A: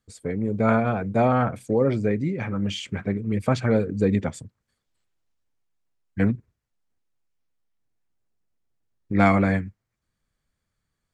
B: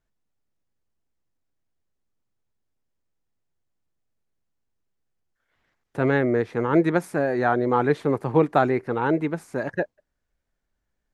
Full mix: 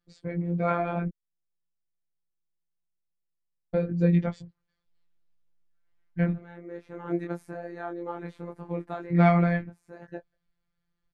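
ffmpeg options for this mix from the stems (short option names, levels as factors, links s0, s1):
-filter_complex "[0:a]lowpass=f=5100:w=0.5412,lowpass=f=5100:w=1.3066,volume=1.19,asplit=3[s0][s1][s2];[s0]atrim=end=1.08,asetpts=PTS-STARTPTS,afade=t=out:st=1.076:d=0.004:c=hsin[s3];[s1]atrim=start=1.08:end=3.74,asetpts=PTS-STARTPTS,volume=0[s4];[s2]atrim=start=3.74,asetpts=PTS-STARTPTS,afade=t=in:d=0.004:c=hsin[s5];[s3][s4][s5]concat=n=3:v=0:a=1,asplit=2[s6][s7];[1:a]adelay=350,volume=0.335[s8];[s7]apad=whole_len=506614[s9];[s8][s9]sidechaincompress=threshold=0.0316:ratio=8:attack=10:release=462[s10];[s6][s10]amix=inputs=2:normalize=0,flanger=delay=19:depth=4.5:speed=0.21,afftfilt=real='hypot(re,im)*cos(PI*b)':imag='0':win_size=1024:overlap=0.75,lowshelf=f=190:g=5.5"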